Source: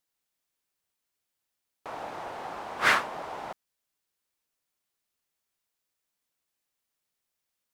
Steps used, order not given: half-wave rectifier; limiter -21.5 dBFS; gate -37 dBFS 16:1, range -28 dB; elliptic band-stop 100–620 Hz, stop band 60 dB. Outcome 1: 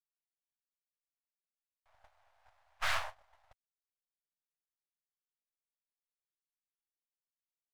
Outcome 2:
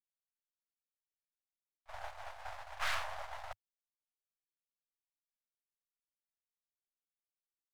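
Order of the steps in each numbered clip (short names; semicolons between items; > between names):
half-wave rectifier > elliptic band-stop > gate > limiter; gate > limiter > half-wave rectifier > elliptic band-stop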